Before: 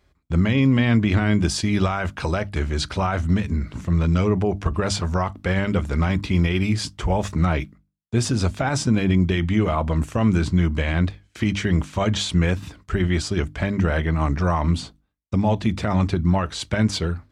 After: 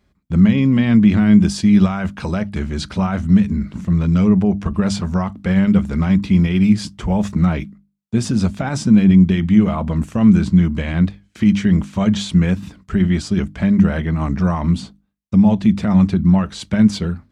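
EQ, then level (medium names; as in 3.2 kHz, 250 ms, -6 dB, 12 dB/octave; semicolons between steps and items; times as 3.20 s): peaking EQ 200 Hz +14.5 dB 0.51 oct; -1.5 dB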